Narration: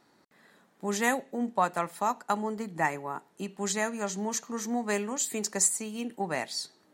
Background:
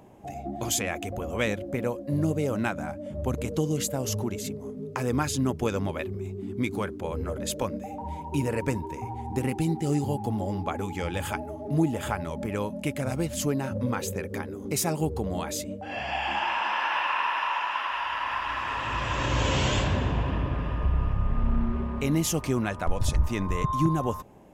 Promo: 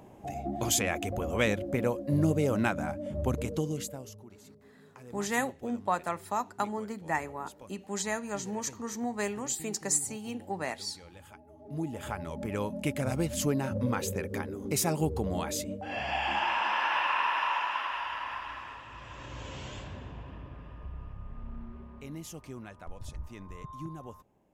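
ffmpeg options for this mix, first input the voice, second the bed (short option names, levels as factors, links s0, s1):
-filter_complex "[0:a]adelay=4300,volume=0.708[s0];[1:a]volume=9.44,afade=t=out:st=3.17:d=0.97:silence=0.0891251,afade=t=in:st=11.44:d=1.39:silence=0.105925,afade=t=out:st=17.51:d=1.34:silence=0.16788[s1];[s0][s1]amix=inputs=2:normalize=0"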